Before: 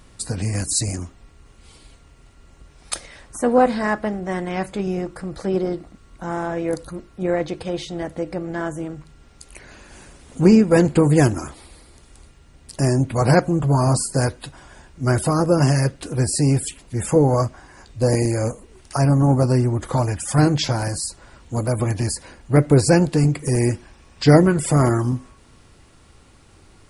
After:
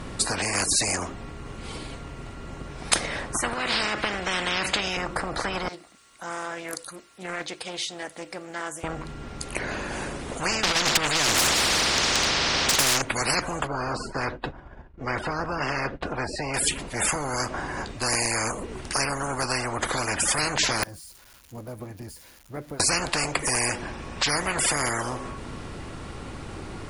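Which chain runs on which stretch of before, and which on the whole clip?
3.53–4.97 weighting filter D + compressor 5:1, threshold -22 dBFS
5.68–8.84 differentiator + Doppler distortion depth 0.18 ms
10.63–13.02 synth low-pass 5000 Hz, resonance Q 3 + negative-ratio compressor -20 dBFS, ratio -0.5 + overdrive pedal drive 32 dB, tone 3600 Hz, clips at -5 dBFS
13.67–16.54 expander -35 dBFS + tape spacing loss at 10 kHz 32 dB
20.83–22.8 switching spikes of -18.5 dBFS + notch 7900 Hz, Q 9.2 + flipped gate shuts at -18 dBFS, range -30 dB
whole clip: high shelf 3600 Hz -11 dB; spectral compressor 10:1; gain +1 dB

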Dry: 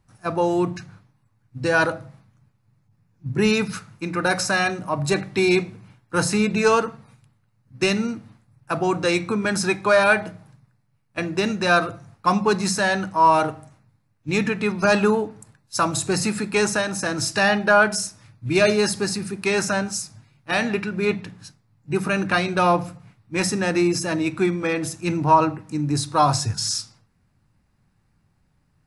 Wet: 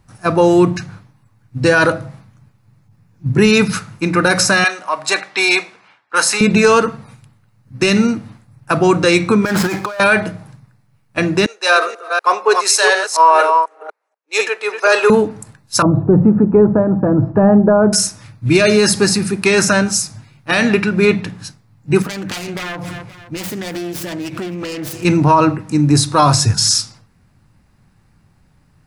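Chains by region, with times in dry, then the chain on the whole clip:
4.64–6.41 HPF 810 Hz + low-pass opened by the level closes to 3000 Hz, open at -22.5 dBFS
9.45–10 median filter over 15 samples + low shelf 390 Hz -8 dB + negative-ratio compressor -31 dBFS
11.46–15.1 reverse delay 0.244 s, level -5.5 dB + elliptic high-pass 420 Hz, stop band 70 dB + three-band expander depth 100%
15.82–17.93 LPF 1000 Hz 24 dB/oct + tilt shelf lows +5.5 dB, about 660 Hz + mismatched tape noise reduction encoder only
22.02–25.05 self-modulated delay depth 0.57 ms + feedback echo 0.26 s, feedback 38%, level -24 dB + compressor 10:1, threshold -32 dBFS
whole clip: dynamic EQ 790 Hz, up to -6 dB, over -36 dBFS, Q 3; maximiser +12 dB; gain -1 dB

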